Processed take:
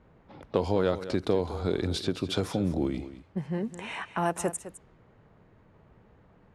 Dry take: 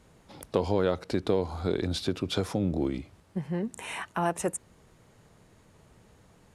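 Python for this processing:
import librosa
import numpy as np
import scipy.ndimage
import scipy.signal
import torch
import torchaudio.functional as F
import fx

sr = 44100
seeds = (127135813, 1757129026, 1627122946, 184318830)

y = fx.env_lowpass(x, sr, base_hz=1800.0, full_db=-26.5)
y = y + 10.0 ** (-13.5 / 20.0) * np.pad(y, (int(208 * sr / 1000.0), 0))[:len(y)]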